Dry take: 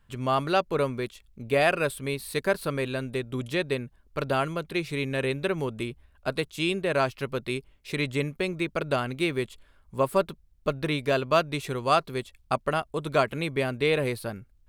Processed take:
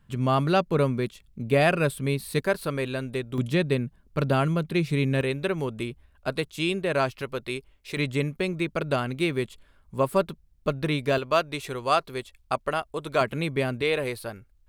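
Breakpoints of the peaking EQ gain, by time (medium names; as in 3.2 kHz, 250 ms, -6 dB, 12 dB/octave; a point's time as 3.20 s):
peaking EQ 170 Hz 1.5 oct
+9.5 dB
from 2.40 s +1 dB
from 3.38 s +10.5 dB
from 5.21 s +1.5 dB
from 7.22 s -5 dB
from 7.97 s +3.5 dB
from 11.18 s -5.5 dB
from 13.21 s +3.5 dB
from 13.82 s -6.5 dB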